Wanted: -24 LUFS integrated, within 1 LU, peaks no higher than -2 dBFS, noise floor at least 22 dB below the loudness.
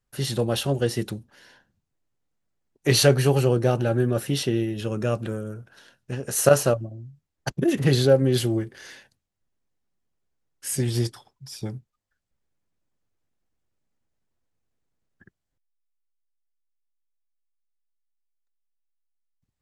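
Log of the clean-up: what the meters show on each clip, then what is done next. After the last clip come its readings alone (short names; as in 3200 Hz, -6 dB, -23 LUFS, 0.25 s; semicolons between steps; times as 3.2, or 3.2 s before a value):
loudness -23.0 LUFS; peak -3.5 dBFS; loudness target -24.0 LUFS
-> gain -1 dB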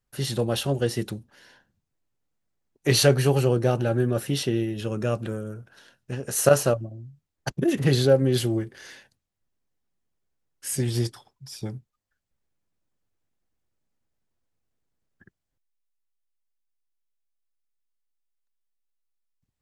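loudness -24.0 LUFS; peak -4.5 dBFS; noise floor -82 dBFS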